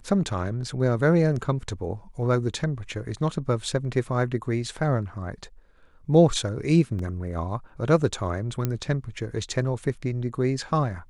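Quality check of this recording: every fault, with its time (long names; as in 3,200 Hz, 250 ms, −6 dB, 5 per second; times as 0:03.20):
0:06.99: drop-out 3.2 ms
0:08.65: click −12 dBFS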